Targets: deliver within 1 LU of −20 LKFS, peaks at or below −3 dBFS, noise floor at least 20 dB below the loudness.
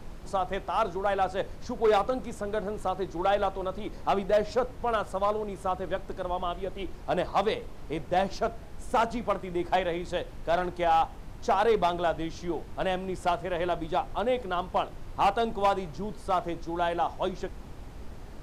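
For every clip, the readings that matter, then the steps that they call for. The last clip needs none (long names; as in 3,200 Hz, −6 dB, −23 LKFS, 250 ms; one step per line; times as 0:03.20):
share of clipped samples 0.5%; peaks flattened at −17.5 dBFS; background noise floor −44 dBFS; target noise floor −50 dBFS; integrated loudness −29.5 LKFS; sample peak −17.5 dBFS; target loudness −20.0 LKFS
→ clipped peaks rebuilt −17.5 dBFS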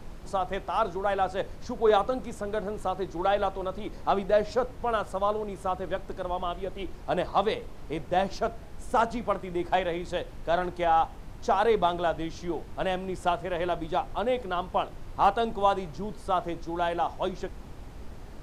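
share of clipped samples 0.0%; background noise floor −44 dBFS; target noise floor −49 dBFS
→ noise reduction from a noise print 6 dB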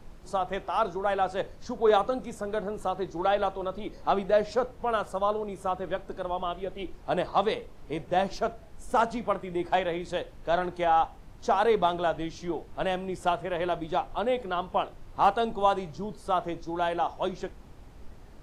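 background noise floor −49 dBFS; integrated loudness −29.0 LKFS; sample peak −9.5 dBFS; target loudness −20.0 LKFS
→ level +9 dB
brickwall limiter −3 dBFS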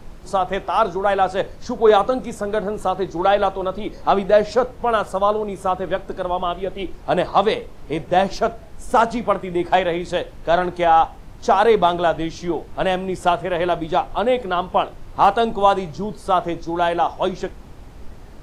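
integrated loudness −20.0 LKFS; sample peak −3.0 dBFS; background noise floor −40 dBFS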